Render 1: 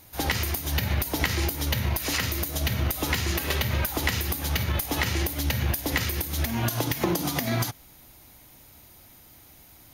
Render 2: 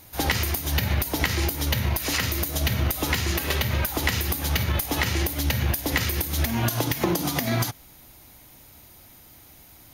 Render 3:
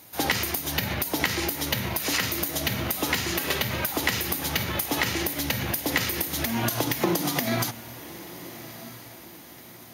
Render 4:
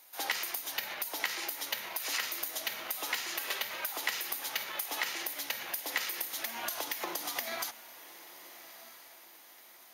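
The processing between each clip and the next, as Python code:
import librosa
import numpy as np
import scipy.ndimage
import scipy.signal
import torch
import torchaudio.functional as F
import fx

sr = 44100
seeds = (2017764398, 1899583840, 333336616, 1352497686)

y1 = fx.rider(x, sr, range_db=10, speed_s=0.5)
y1 = F.gain(torch.from_numpy(y1), 2.0).numpy()
y2 = scipy.signal.sosfilt(scipy.signal.butter(2, 150.0, 'highpass', fs=sr, output='sos'), y1)
y2 = fx.echo_diffused(y2, sr, ms=1264, feedback_pct=46, wet_db=-15.5)
y3 = scipy.signal.sosfilt(scipy.signal.butter(2, 690.0, 'highpass', fs=sr, output='sos'), y2)
y3 = F.gain(torch.from_numpy(y3), -7.5).numpy()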